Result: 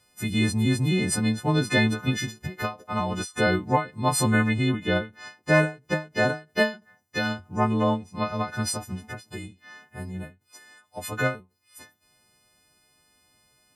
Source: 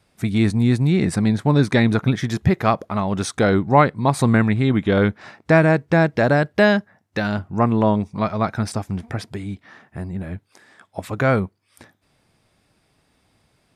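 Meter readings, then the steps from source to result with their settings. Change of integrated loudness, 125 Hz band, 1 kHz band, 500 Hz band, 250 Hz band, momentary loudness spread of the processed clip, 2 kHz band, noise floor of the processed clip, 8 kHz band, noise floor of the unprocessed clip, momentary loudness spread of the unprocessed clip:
−6.0 dB, −7.5 dB, −6.5 dB, −7.5 dB, −7.5 dB, 17 LU, −3.0 dB, −67 dBFS, +4.0 dB, −65 dBFS, 15 LU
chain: every partial snapped to a pitch grid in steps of 3 semitones
every ending faded ahead of time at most 200 dB per second
level −5.5 dB

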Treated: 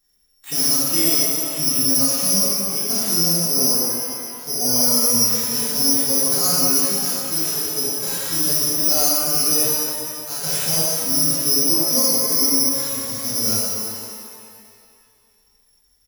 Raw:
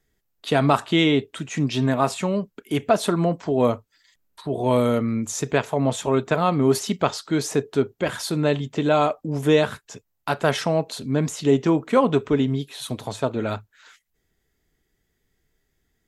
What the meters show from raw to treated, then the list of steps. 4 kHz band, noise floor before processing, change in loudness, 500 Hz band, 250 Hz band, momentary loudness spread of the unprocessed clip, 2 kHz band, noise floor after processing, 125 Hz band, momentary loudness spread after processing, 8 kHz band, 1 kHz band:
+11.0 dB, −74 dBFS, +6.0 dB, −7.5 dB, −4.5 dB, 9 LU, −5.0 dB, −60 dBFS, −7.5 dB, 8 LU, +19.0 dB, −7.0 dB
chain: comb filter 3.9 ms, depth 33%
harmonic and percussive parts rebalanced percussive −15 dB
downward compressor, threshold −23 dBFS, peak gain reduction 12 dB
bad sample-rate conversion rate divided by 8×, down none, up zero stuff
reverb with rising layers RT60 2.2 s, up +12 semitones, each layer −8 dB, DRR −8.5 dB
level −8.5 dB

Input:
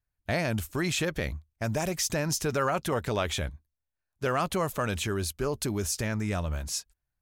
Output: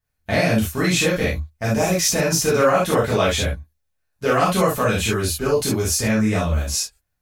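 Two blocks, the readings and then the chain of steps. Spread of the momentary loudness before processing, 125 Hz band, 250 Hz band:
6 LU, +9.0 dB, +11.0 dB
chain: reverb whose tail is shaped and stops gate 90 ms flat, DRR −7.5 dB
level +2 dB

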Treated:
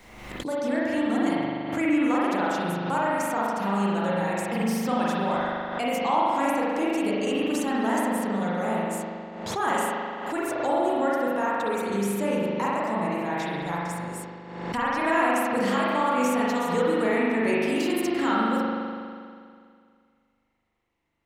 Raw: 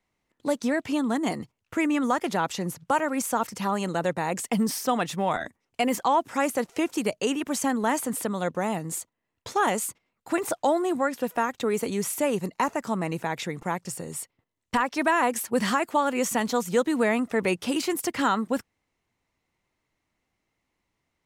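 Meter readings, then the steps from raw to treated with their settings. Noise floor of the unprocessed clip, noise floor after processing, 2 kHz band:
−80 dBFS, −67 dBFS, +1.0 dB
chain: spring reverb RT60 2.2 s, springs 40 ms, chirp 30 ms, DRR −7 dB
background raised ahead of every attack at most 49 dB per second
level −7 dB

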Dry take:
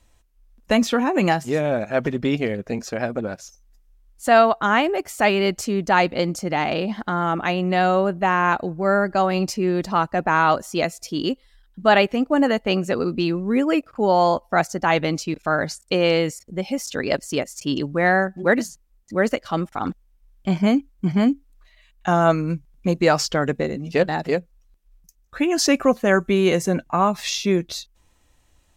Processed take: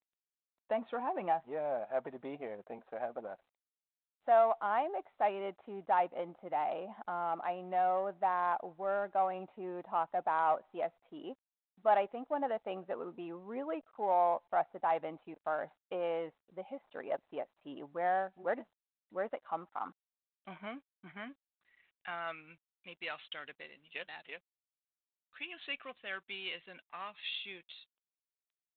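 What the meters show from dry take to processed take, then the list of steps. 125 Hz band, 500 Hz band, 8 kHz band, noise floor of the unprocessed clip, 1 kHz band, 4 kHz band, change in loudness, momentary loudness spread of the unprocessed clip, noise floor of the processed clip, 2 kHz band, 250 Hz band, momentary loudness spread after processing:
−31.0 dB, −15.5 dB, below −40 dB, −60 dBFS, −11.5 dB, −19.0 dB, −15.0 dB, 9 LU, below −85 dBFS, −19.5 dB, −26.0 dB, 16 LU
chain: gain on one half-wave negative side −3 dB
band-pass filter sweep 790 Hz → 3,100 Hz, 0:19.15–0:22.98
in parallel at −11 dB: soft clipping −25.5 dBFS, distortion −7 dB
on the sum: level −8.5 dB
G.726 40 kbit/s 8,000 Hz

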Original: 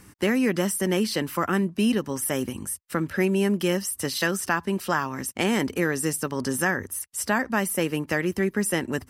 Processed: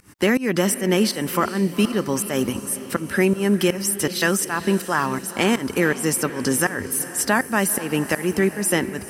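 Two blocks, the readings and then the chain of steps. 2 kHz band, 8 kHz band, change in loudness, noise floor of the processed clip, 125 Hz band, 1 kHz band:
+3.5 dB, +6.0 dB, +4.0 dB, −36 dBFS, +3.5 dB, +4.0 dB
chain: low-shelf EQ 140 Hz −4 dB
in parallel at −1 dB: brickwall limiter −20.5 dBFS, peak gain reduction 11.5 dB
on the sum: fake sidechain pumping 81 BPM, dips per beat 2, −23 dB, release 225 ms
feedback delay with all-pass diffusion 460 ms, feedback 55%, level −14 dB
level +2.5 dB

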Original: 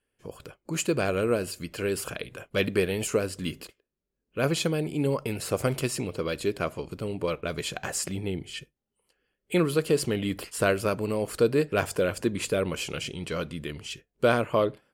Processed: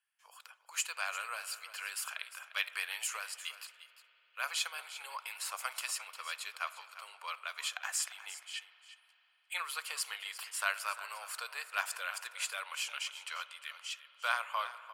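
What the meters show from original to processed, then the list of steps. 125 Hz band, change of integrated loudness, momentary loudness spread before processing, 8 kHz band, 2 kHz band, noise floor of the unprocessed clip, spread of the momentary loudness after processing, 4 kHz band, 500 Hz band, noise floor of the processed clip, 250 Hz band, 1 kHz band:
below −40 dB, −9.5 dB, 11 LU, −3.5 dB, −3.0 dB, −83 dBFS, 11 LU, −3.5 dB, −28.0 dB, −70 dBFS, below −40 dB, −5.0 dB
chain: Butterworth high-pass 880 Hz 36 dB per octave
on a send: single-tap delay 351 ms −14 dB
on the sum: spring reverb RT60 3.7 s, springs 48 ms, chirp 40 ms, DRR 15.5 dB
level −3.5 dB

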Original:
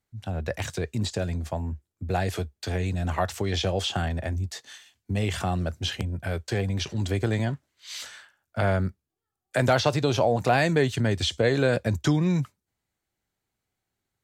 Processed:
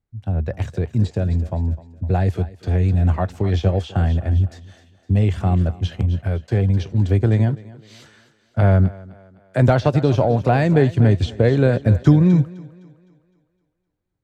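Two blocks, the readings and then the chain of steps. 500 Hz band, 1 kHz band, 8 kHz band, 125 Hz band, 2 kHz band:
+4.5 dB, +2.5 dB, can't be measured, +11.0 dB, −1.0 dB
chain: spectral tilt −3 dB per octave
on a send: feedback echo with a high-pass in the loop 256 ms, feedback 47%, high-pass 150 Hz, level −13.5 dB
on the sum: expander for the loud parts 1.5 to 1, over −28 dBFS
level +4 dB

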